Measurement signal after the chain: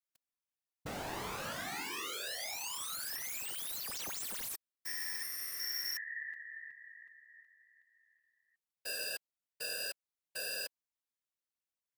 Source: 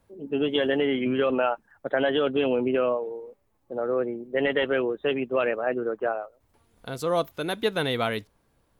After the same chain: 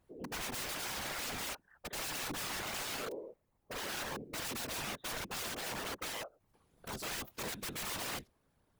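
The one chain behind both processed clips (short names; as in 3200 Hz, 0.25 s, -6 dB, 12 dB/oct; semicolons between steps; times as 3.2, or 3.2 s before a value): wrapped overs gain 28 dB; whisperiser; gain -7 dB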